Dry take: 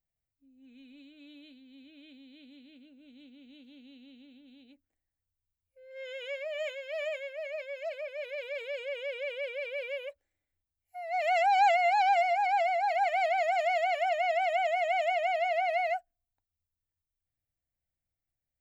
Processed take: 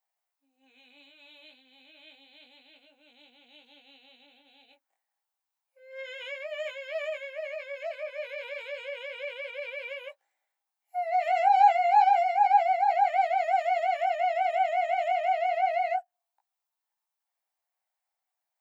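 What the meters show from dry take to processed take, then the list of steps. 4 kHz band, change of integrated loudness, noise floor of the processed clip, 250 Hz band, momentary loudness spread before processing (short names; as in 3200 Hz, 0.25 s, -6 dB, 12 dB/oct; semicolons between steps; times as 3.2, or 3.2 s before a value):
-2.0 dB, +2.5 dB, under -85 dBFS, n/a, 14 LU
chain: compressor 2:1, threshold -42 dBFS, peak gain reduction 12 dB; chorus 0.3 Hz, delay 16.5 ms, depth 6.7 ms; resonant high-pass 830 Hz, resonance Q 3.9; gain +7.5 dB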